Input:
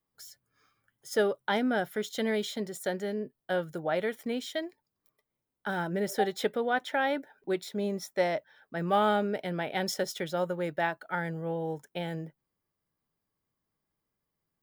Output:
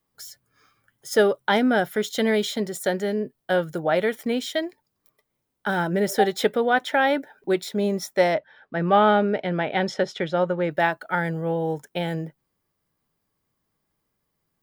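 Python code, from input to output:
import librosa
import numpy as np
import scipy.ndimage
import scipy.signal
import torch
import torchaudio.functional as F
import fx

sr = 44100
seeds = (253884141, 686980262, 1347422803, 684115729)

y = fx.lowpass(x, sr, hz=3400.0, slope=12, at=(8.34, 10.71))
y = y * librosa.db_to_amplitude(8.0)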